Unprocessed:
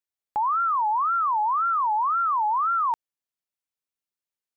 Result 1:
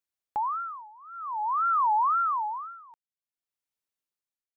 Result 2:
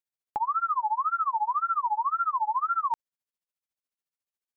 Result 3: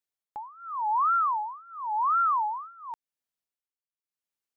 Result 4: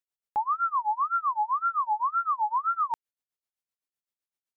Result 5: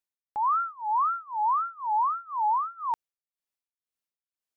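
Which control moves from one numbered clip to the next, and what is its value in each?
tremolo, rate: 0.52 Hz, 14 Hz, 0.91 Hz, 7.8 Hz, 2 Hz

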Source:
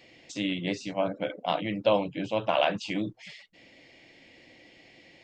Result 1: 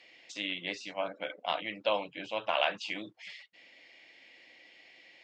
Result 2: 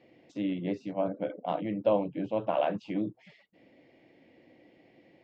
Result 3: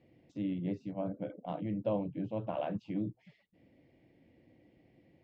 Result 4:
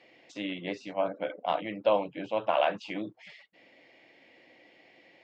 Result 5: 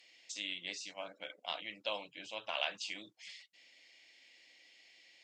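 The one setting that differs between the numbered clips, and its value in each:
band-pass filter, frequency: 2.3 kHz, 310 Hz, 100 Hz, 910 Hz, 7.8 kHz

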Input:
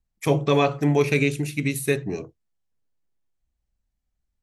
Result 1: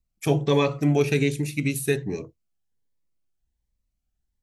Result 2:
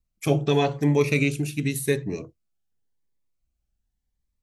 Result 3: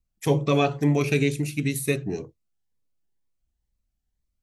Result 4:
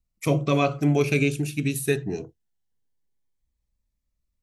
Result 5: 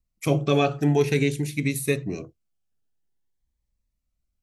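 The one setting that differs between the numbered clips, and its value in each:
Shepard-style phaser, rate: 1.3 Hz, 0.9 Hz, 2.1 Hz, 0.23 Hz, 0.5 Hz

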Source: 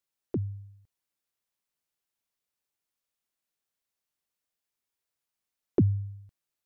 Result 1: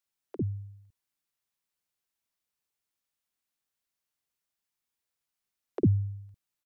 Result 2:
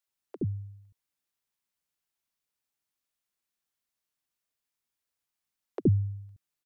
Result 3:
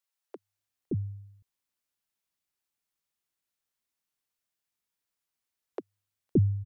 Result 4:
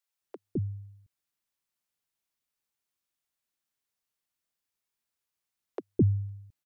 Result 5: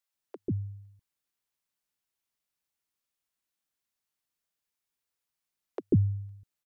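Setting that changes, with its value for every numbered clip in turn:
bands offset in time, time: 50 ms, 70 ms, 570 ms, 210 ms, 140 ms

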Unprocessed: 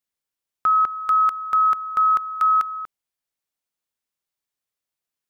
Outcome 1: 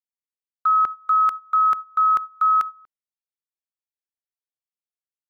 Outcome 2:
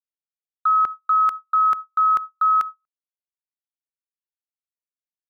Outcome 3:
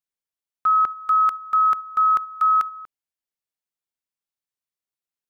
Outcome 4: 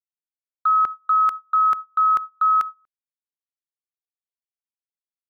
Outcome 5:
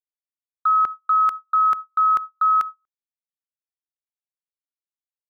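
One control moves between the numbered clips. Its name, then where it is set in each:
gate, range: -19 dB, -57 dB, -7 dB, -31 dB, -43 dB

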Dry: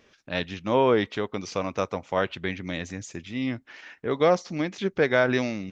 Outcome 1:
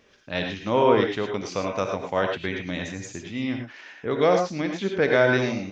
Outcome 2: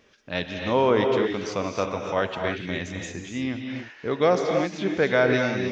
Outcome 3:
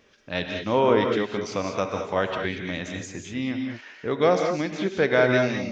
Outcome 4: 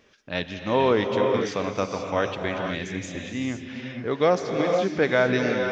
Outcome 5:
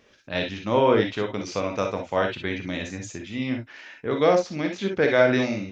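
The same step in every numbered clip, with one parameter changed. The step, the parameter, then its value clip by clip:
gated-style reverb, gate: 130 ms, 330 ms, 230 ms, 520 ms, 80 ms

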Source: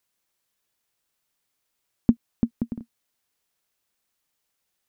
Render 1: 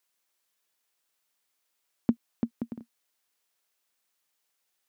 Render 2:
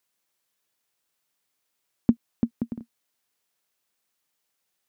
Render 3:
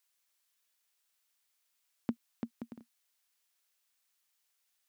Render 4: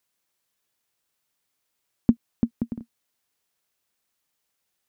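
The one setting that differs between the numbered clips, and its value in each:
high-pass, cutoff frequency: 430 Hz, 140 Hz, 1.5 kHz, 44 Hz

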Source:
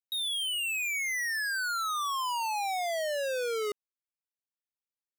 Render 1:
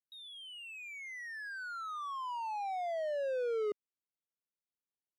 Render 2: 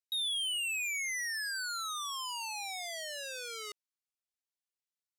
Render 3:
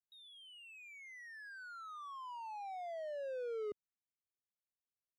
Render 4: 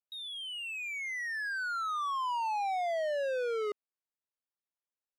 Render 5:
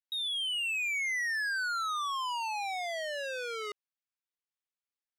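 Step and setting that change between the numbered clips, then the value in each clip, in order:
band-pass filter, frequency: 260 Hz, 5.7 kHz, 100 Hz, 700 Hz, 2.1 kHz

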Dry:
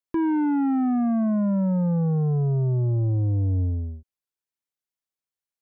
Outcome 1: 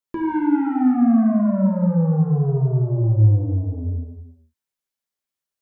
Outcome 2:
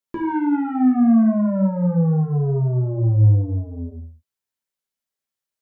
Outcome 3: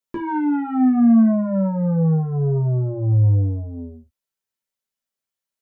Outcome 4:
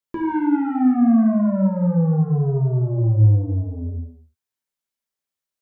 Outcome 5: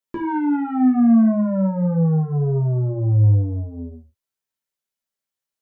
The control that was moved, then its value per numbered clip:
gated-style reverb, gate: 520 ms, 210 ms, 90 ms, 340 ms, 130 ms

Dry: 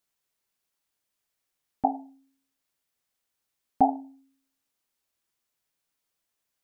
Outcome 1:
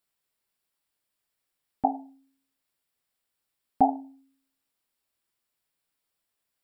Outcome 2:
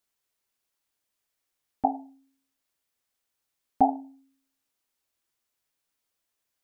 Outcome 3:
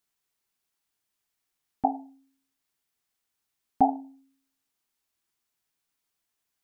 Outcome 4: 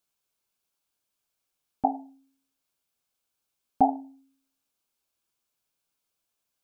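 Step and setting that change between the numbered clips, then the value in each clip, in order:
band-stop, frequency: 6.3 kHz, 170 Hz, 550 Hz, 1.9 kHz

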